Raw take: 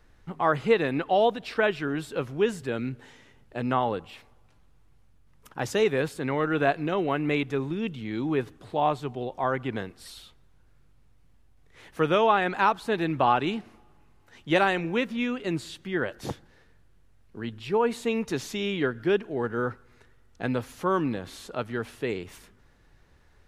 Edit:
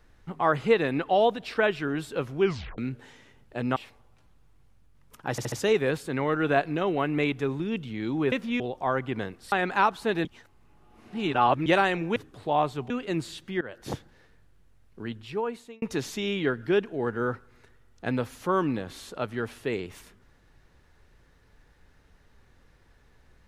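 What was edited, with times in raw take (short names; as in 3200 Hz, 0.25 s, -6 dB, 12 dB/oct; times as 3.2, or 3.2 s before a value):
2.41 tape stop 0.37 s
3.76–4.08 cut
5.63 stutter 0.07 s, 4 plays
8.43–9.17 swap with 14.99–15.27
10.09–12.35 cut
13.08–14.49 reverse
15.98–16.28 fade in, from -18.5 dB
17.39–18.19 fade out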